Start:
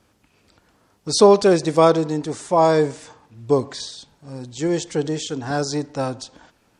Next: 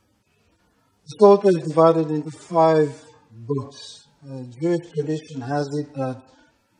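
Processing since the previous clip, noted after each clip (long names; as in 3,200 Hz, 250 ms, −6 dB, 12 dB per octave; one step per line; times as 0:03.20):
harmonic-percussive split with one part muted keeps harmonic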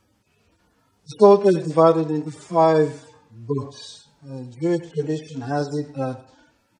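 single-tap delay 102 ms −18 dB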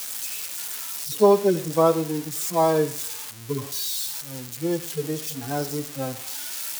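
spike at every zero crossing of −17.5 dBFS
level −4 dB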